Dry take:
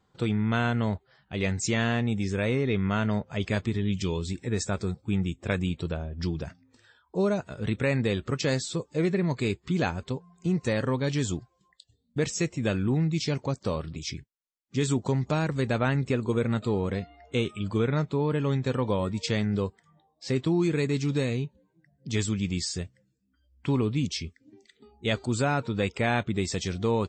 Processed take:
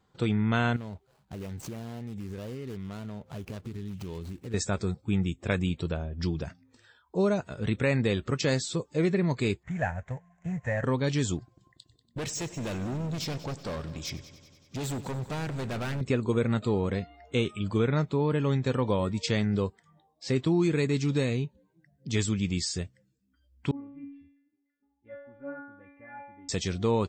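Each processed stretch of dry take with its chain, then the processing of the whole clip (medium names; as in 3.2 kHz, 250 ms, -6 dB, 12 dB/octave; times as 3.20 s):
0.76–4.54 s: median filter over 25 samples + treble shelf 3.4 kHz +7 dB + compression 5:1, threshold -35 dBFS
9.63–10.84 s: CVSD coder 32 kbps + FFT filter 120 Hz 0 dB, 180 Hz -6 dB, 360 Hz -20 dB, 640 Hz +4 dB, 1.2 kHz -9 dB, 1.8 kHz +5 dB, 3.4 kHz -20 dB, 4.9 kHz -29 dB, 7.3 kHz +2 dB
11.38–16.01 s: overload inside the chain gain 31 dB + multi-head delay 95 ms, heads first and second, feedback 61%, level -18.5 dB
23.71–26.49 s: steep low-pass 2 kHz + peaking EQ 61 Hz +8.5 dB 1.7 oct + inharmonic resonator 280 Hz, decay 0.79 s, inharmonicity 0.002
whole clip: none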